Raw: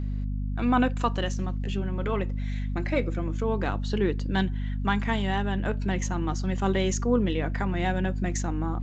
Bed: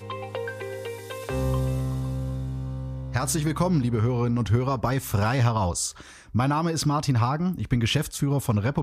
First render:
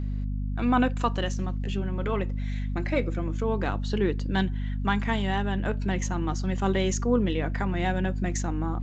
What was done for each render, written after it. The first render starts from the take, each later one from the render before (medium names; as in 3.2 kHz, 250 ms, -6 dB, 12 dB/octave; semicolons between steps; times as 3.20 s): no audible change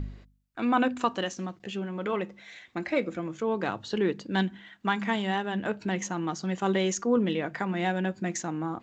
de-hum 50 Hz, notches 5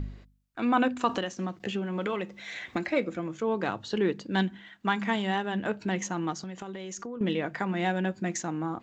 1.09–2.89 s: three bands compressed up and down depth 100%; 6.32–7.21 s: compression 16:1, threshold -34 dBFS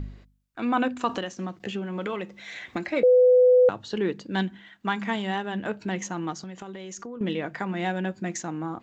3.03–3.69 s: bleep 501 Hz -13 dBFS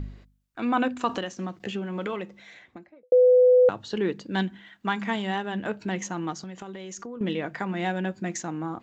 2.00–3.12 s: studio fade out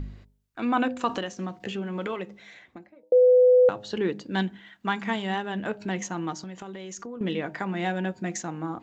de-hum 103.3 Hz, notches 9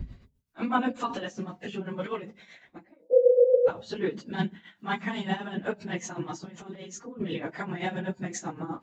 phase randomisation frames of 50 ms; tremolo 7.9 Hz, depth 66%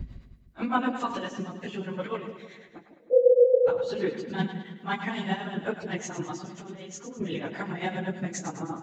two-band feedback delay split 660 Hz, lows 153 ms, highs 104 ms, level -9 dB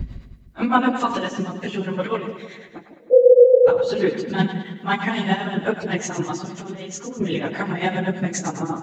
trim +8.5 dB; peak limiter -3 dBFS, peak gain reduction 3 dB